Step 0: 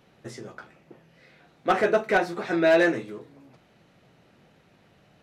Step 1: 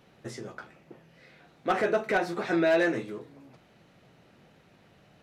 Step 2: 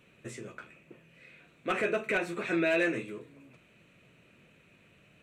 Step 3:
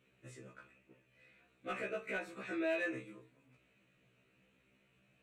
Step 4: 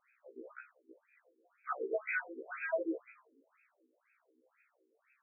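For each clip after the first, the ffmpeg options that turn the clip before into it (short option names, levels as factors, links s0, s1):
-af "alimiter=limit=0.133:level=0:latency=1:release=103"
-af "equalizer=f=800:t=o:w=0.33:g=-12,equalizer=f=2500:t=o:w=0.33:g=12,equalizer=f=5000:t=o:w=0.33:g=-10,equalizer=f=8000:t=o:w=0.33:g=8,volume=0.708"
-af "afftfilt=real='re*1.73*eq(mod(b,3),0)':imag='im*1.73*eq(mod(b,3),0)':win_size=2048:overlap=0.75,volume=0.376"
-af "afftfilt=real='re*between(b*sr/1024,330*pow(1900/330,0.5+0.5*sin(2*PI*2*pts/sr))/1.41,330*pow(1900/330,0.5+0.5*sin(2*PI*2*pts/sr))*1.41)':imag='im*between(b*sr/1024,330*pow(1900/330,0.5+0.5*sin(2*PI*2*pts/sr))/1.41,330*pow(1900/330,0.5+0.5*sin(2*PI*2*pts/sr))*1.41)':win_size=1024:overlap=0.75,volume=2.24"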